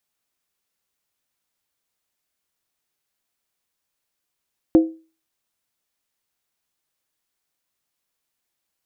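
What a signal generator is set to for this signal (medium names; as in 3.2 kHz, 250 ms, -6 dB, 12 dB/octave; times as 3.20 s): skin hit, lowest mode 323 Hz, decay 0.34 s, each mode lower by 11.5 dB, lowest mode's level -6 dB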